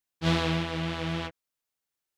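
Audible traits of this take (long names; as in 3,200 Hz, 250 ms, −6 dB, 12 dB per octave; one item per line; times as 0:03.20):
background noise floor −87 dBFS
spectral slope −4.5 dB per octave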